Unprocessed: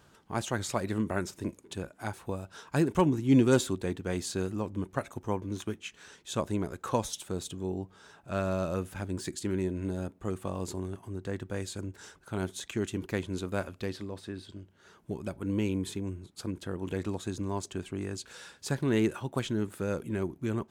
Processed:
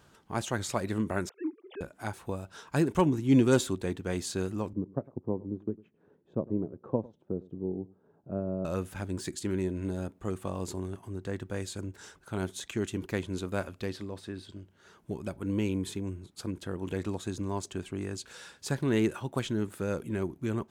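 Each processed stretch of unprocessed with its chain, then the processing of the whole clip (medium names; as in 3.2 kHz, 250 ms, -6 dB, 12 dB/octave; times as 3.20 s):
1.29–1.81 s: formants replaced by sine waves + low-pass 2.9 kHz + low-pass that closes with the level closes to 1.5 kHz, closed at -31.5 dBFS
4.73–8.65 s: transient shaper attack +3 dB, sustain -4 dB + Butterworth band-pass 240 Hz, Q 0.58 + delay 102 ms -21.5 dB
whole clip: none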